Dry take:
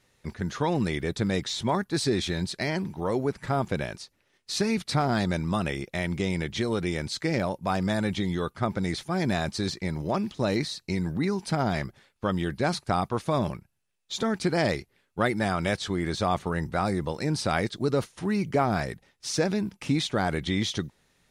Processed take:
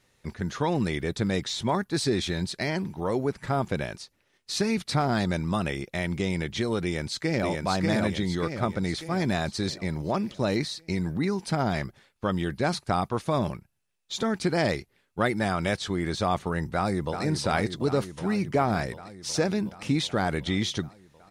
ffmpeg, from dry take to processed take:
-filter_complex "[0:a]asplit=2[s0][s1];[s1]afade=t=in:st=6.83:d=0.01,afade=t=out:st=7.48:d=0.01,aecho=0:1:590|1180|1770|2360|2950|3540|4130:0.794328|0.397164|0.198582|0.099291|0.0496455|0.0248228|0.0124114[s2];[s0][s2]amix=inputs=2:normalize=0,asplit=2[s3][s4];[s4]afade=t=in:st=16.75:d=0.01,afade=t=out:st=17.23:d=0.01,aecho=0:1:370|740|1110|1480|1850|2220|2590|2960|3330|3700|4070|4440:0.398107|0.318486|0.254789|0.203831|0.163065|0.130452|0.104361|0.0834891|0.0667913|0.053433|0.0427464|0.0341971[s5];[s3][s5]amix=inputs=2:normalize=0"

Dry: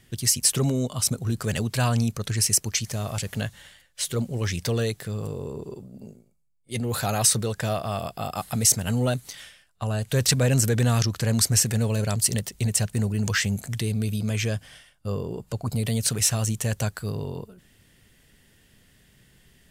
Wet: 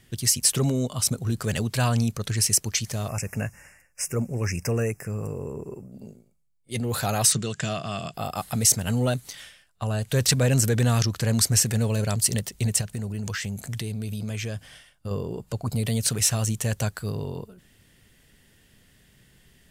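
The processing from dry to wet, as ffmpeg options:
-filter_complex "[0:a]asettb=1/sr,asplit=3[s0][s1][s2];[s0]atrim=end=3.084[s3];[s1]atrim=start=3.08:end=5.92,asetpts=PTS-STARTPTS,afade=t=in:d=0.004:c=qsin,afade=t=out:st=2.836:d=0.004:c=qsin,asuperstop=centerf=3700:order=20:qfactor=1.7[s4];[s2]atrim=start=5.916[s5];[s3][s4]acrossfade=d=0.004:c1=hsin:c2=qsin[s6];[s6][s5]acrossfade=d=0.004:c1=qsin:c2=hsin,asettb=1/sr,asplit=3[s7][s8][s9];[s7]atrim=end=7.324[s10];[s8]atrim=start=7.32:end=8.14,asetpts=PTS-STARTPTS,afade=t=in:d=0.004:c=qsin,afade=t=out:st=0.816:d=0.004:c=qsin,highpass=130,equalizer=f=150:t=q:w=4:g=8,equalizer=f=520:t=q:w=4:g=-9,equalizer=f=880:t=q:w=4:g=-9,equalizer=f=2900:t=q:w=4:g=6,equalizer=f=7100:t=q:w=4:g=9,lowpass=f=8100:w=0.5412,lowpass=f=8100:w=1.3066[s11];[s9]atrim=start=8.136[s12];[s10][s11]acrossfade=d=0.004:c1=hsin:c2=qsin[s13];[s13][s12]acrossfade=d=0.004:c1=qsin:c2=hsin,asettb=1/sr,asplit=3[s14][s15][s16];[s14]atrim=end=12.814[s17];[s15]atrim=start=12.81:end=15.11,asetpts=PTS-STARTPTS,afade=t=in:d=0.004:c=qsin,afade=t=out:st=2.296:d=0.004:c=qsin,acompressor=threshold=0.0447:ratio=6:attack=3.2:release=140:knee=1:detection=peak[s18];[s16]atrim=start=15.106[s19];[s17][s18]acrossfade=d=0.004:c1=hsin:c2=qsin[s20];[s20][s19]acrossfade=d=0.004:c1=qsin:c2=hsin"

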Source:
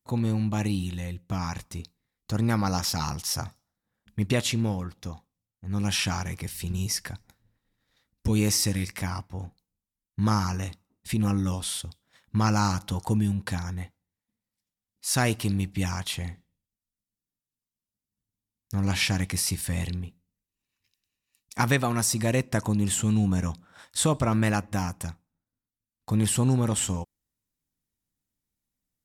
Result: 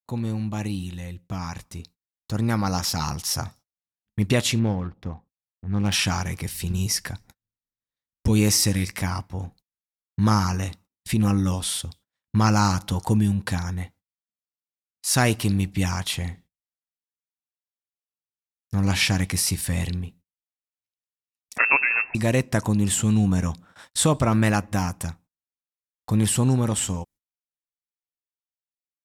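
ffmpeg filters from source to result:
-filter_complex "[0:a]asettb=1/sr,asplit=3[s0][s1][s2];[s0]atrim=end=4.594[s3];[s1]atrim=start=4.59:end=5.94,asetpts=PTS-STARTPTS,afade=t=in:d=0.004:c=qsin,afade=t=out:st=1.346:d=0.004:c=qsin,adynamicsmooth=sensitivity=6.5:basefreq=1100[s4];[s2]atrim=start=5.936[s5];[s3][s4]acrossfade=d=0.004:c1=hsin:c2=qsin[s6];[s6][s5]acrossfade=d=0.004:c1=qsin:c2=hsin,asettb=1/sr,asplit=3[s7][s8][s9];[s7]atrim=end=21.584[s10];[s8]atrim=start=21.58:end=22.15,asetpts=PTS-STARTPTS,afade=t=in:d=0.004:c=qsin,afade=t=out:st=0.566:d=0.004:c=qsin,lowpass=f=2400:t=q:w=0.5098,lowpass=f=2400:t=q:w=0.6013,lowpass=f=2400:t=q:w=0.9,lowpass=f=2400:t=q:w=2.563,afreqshift=-2800[s11];[s9]atrim=start=22.146[s12];[s10][s11]acrossfade=d=0.004:c1=hsin:c2=qsin[s13];[s13][s12]acrossfade=d=0.004:c1=qsin:c2=hsin,dynaudnorm=f=310:g=17:m=2,agate=range=0.0316:threshold=0.00447:ratio=16:detection=peak,volume=0.841"

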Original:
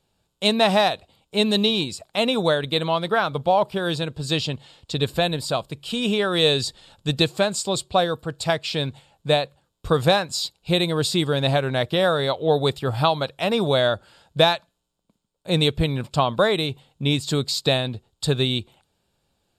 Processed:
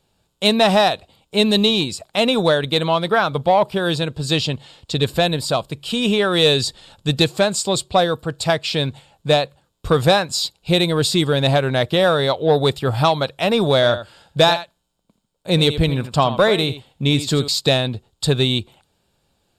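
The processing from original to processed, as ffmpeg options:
-filter_complex "[0:a]asettb=1/sr,asplit=3[s0][s1][s2];[s0]atrim=end=13.744[s3];[s1]atrim=start=13.74:end=17.48,asetpts=PTS-STARTPTS,afade=t=in:d=0.004:c=qsin,afade=t=out:st=3.736:d=0.004:c=qsin,aecho=1:1:82:0.224,atrim=end_sample=164934[s4];[s2]atrim=start=17.476[s5];[s3][s4]acrossfade=d=0.004:c1=hsin:c2=qsin[s6];[s6][s5]acrossfade=d=0.004:c1=qsin:c2=hsin,acontrast=73,volume=0.794"

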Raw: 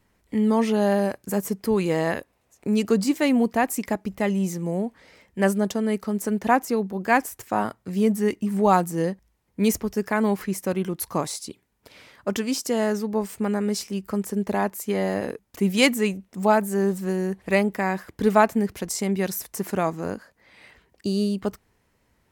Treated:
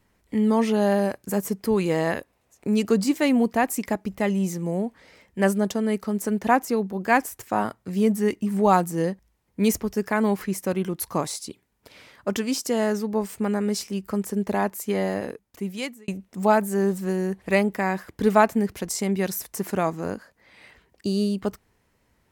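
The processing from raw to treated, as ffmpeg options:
-filter_complex "[0:a]asplit=2[s0][s1];[s0]atrim=end=16.08,asetpts=PTS-STARTPTS,afade=t=out:st=14.98:d=1.1[s2];[s1]atrim=start=16.08,asetpts=PTS-STARTPTS,afade=t=in:d=0.004:c=hsin[s3];[s2][s3]concat=n=2:v=0:a=1"

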